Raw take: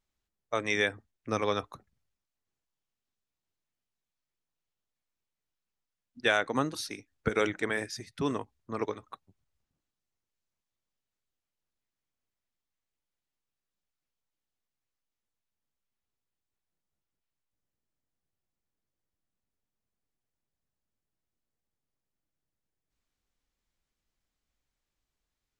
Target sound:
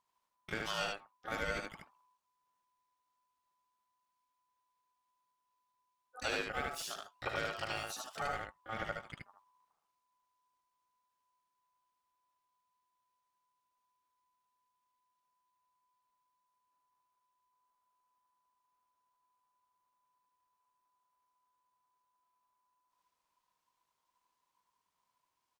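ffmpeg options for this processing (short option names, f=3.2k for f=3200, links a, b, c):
-filter_complex "[0:a]acompressor=threshold=-42dB:ratio=2,asplit=2[a][b];[b]asetrate=88200,aresample=44100,atempo=0.5,volume=-7dB[c];[a][c]amix=inputs=2:normalize=0,aecho=1:1:75:0.708,aeval=exprs='val(0)*sin(2*PI*1000*n/s)':c=same,volume=1.5dB"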